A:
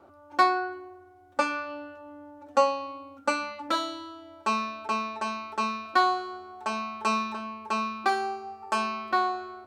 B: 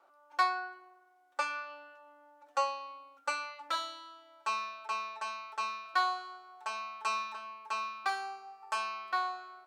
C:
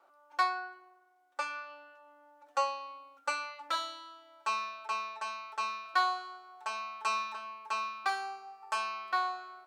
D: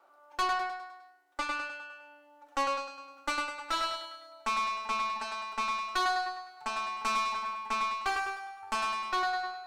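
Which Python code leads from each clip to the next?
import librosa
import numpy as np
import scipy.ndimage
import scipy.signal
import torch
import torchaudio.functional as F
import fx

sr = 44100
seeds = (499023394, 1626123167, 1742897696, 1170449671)

y1 = scipy.signal.sosfilt(scipy.signal.butter(2, 870.0, 'highpass', fs=sr, output='sos'), x)
y1 = y1 * 10.0 ** (-5.0 / 20.0)
y2 = fx.rider(y1, sr, range_db=4, speed_s=2.0)
y3 = fx.echo_feedback(y2, sr, ms=102, feedback_pct=51, wet_db=-5.0)
y3 = fx.tube_stage(y3, sr, drive_db=29.0, bias=0.6)
y3 = y3 * 10.0 ** (5.0 / 20.0)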